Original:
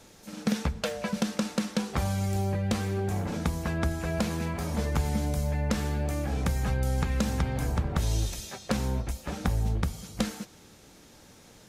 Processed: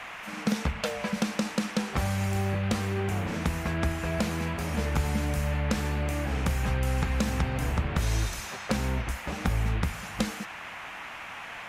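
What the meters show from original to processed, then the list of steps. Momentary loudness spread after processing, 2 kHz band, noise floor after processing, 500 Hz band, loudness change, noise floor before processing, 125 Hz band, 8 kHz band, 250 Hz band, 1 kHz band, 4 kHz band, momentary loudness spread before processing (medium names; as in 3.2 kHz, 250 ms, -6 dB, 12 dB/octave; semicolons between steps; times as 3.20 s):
7 LU, +5.0 dB, -41 dBFS, 0.0 dB, 0.0 dB, -54 dBFS, 0.0 dB, 0.0 dB, 0.0 dB, +2.0 dB, +1.5 dB, 5 LU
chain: rattle on loud lows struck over -24 dBFS, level -37 dBFS; band noise 630–2700 Hz -41 dBFS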